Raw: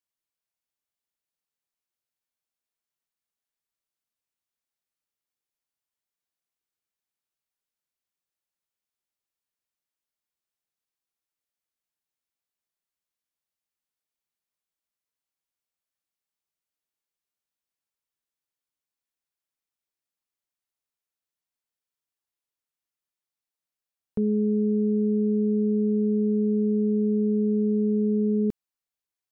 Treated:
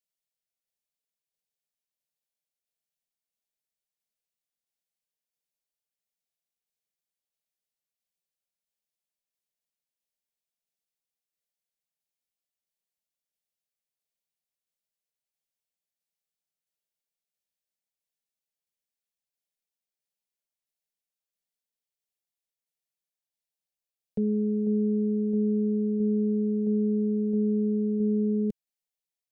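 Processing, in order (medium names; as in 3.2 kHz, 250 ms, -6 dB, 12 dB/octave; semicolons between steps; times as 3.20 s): tremolo saw down 1.5 Hz, depth 30%; static phaser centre 310 Hz, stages 6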